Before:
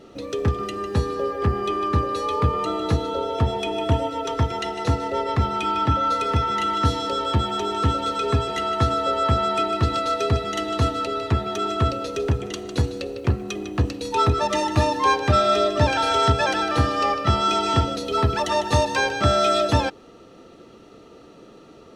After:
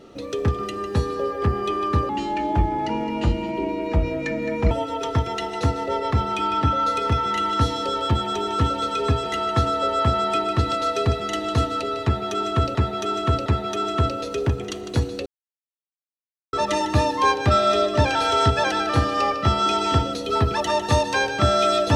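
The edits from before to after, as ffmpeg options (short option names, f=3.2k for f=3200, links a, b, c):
-filter_complex "[0:a]asplit=7[a][b][c][d][e][f][g];[a]atrim=end=2.094[h];[b]atrim=start=2.09:end=3.95,asetpts=PTS-STARTPTS,asetrate=31311,aresample=44100[i];[c]atrim=start=3.946:end=11.992[j];[d]atrim=start=11.278:end=11.992[k];[e]atrim=start=11.278:end=13.08,asetpts=PTS-STARTPTS,afade=t=out:st=1.798:d=0.004:c=hsin[l];[f]atrim=start=13.08:end=14.35,asetpts=PTS-STARTPTS,volume=0[m];[g]atrim=start=14.35,asetpts=PTS-STARTPTS,afade=t=in:d=0.004:c=hsin[n];[h][i]acrossfade=d=0.004:c1=hsin:c2=hsin[o];[o][j]acrossfade=d=0.004:c1=hsin:c2=hsin[p];[p][k]acrossfade=d=0.004:c1=hsin:c2=hsin[q];[l][m][n]concat=n=3:v=0:a=1[r];[q][r]acrossfade=d=0.004:c1=hsin:c2=hsin"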